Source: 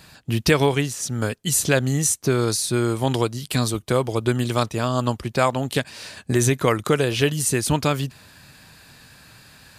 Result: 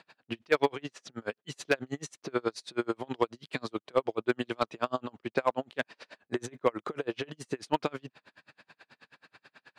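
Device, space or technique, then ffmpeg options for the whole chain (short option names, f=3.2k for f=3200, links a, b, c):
helicopter radio: -filter_complex "[0:a]asettb=1/sr,asplit=3[a][b][c];[a]atrim=end=5.814[d];[b]atrim=start=5.81:end=7.55,asetpts=PTS-STARTPTS,afade=t=in:d=0.004:c=qsin,afade=t=out:st=1.736:d=0.004:c=qsin,equalizer=f=3.1k:t=o:w=1.7:g=-4[e];[c]atrim=start=7.546[f];[d][e]acrossfade=d=0.004:c1=hsin:c2=qsin[g];[g][f]acrossfade=d=0.004:c1=qsin:c2=hsin,highpass=320,lowpass=2.9k,aeval=exprs='val(0)*pow(10,-38*(0.5-0.5*cos(2*PI*9.3*n/s))/20)':c=same,asoftclip=type=hard:threshold=-14dB"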